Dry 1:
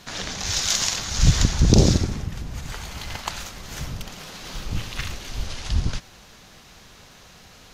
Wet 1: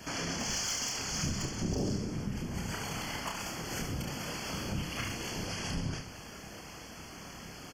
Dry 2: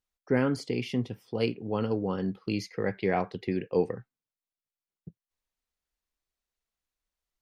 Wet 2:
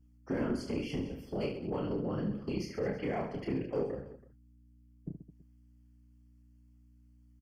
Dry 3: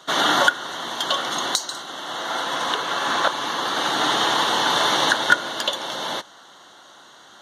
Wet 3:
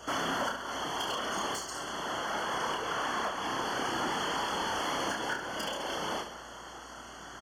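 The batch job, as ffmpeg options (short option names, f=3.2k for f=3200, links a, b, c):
-filter_complex "[0:a]highpass=160,lowshelf=f=350:g=8,asplit=2[a][b];[b]alimiter=limit=-11dB:level=0:latency=1:release=410,volume=1dB[c];[a][c]amix=inputs=2:normalize=0,acompressor=threshold=-28dB:ratio=2.5,asoftclip=type=hard:threshold=-18dB,afftfilt=real='hypot(re,im)*cos(2*PI*random(0))':imag='hypot(re,im)*sin(2*PI*random(1))':win_size=512:overlap=0.75,aeval=exprs='val(0)+0.001*(sin(2*PI*60*n/s)+sin(2*PI*2*60*n/s)/2+sin(2*PI*3*60*n/s)/3+sin(2*PI*4*60*n/s)/4+sin(2*PI*5*60*n/s)/5)':c=same,aecho=1:1:30|72|130.8|213.1|328.4:0.631|0.398|0.251|0.158|0.1,aeval=exprs='0.158*(cos(1*acos(clip(val(0)/0.158,-1,1)))-cos(1*PI/2))+0.01*(cos(5*acos(clip(val(0)/0.158,-1,1)))-cos(5*PI/2))':c=same,asuperstop=centerf=3800:order=12:qfactor=4.3,volume=-4dB"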